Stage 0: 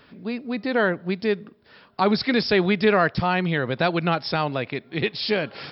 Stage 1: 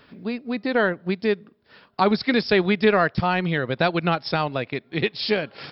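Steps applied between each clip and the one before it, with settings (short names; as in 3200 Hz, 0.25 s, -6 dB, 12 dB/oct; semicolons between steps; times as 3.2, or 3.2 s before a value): transient shaper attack +2 dB, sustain -6 dB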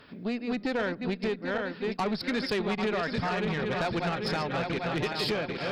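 regenerating reverse delay 0.395 s, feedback 66%, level -7 dB; compressor 4:1, threshold -23 dBFS, peak gain reduction 9.5 dB; tube stage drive 23 dB, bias 0.2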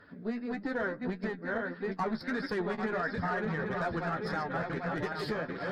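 bin magnitudes rounded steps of 15 dB; resonant high shelf 2100 Hz -6 dB, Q 3; flange 1.6 Hz, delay 9.9 ms, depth 3.7 ms, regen +32%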